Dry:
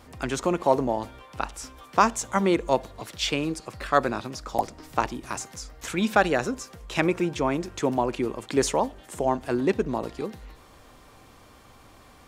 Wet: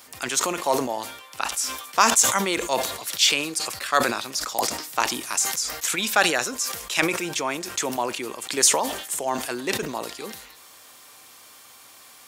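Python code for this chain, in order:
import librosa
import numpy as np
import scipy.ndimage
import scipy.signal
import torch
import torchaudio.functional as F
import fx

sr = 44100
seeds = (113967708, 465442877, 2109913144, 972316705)

y = scipy.signal.sosfilt(scipy.signal.butter(2, 66.0, 'highpass', fs=sr, output='sos'), x)
y = fx.tilt_eq(y, sr, slope=4.5)
y = fx.sustainer(y, sr, db_per_s=63.0)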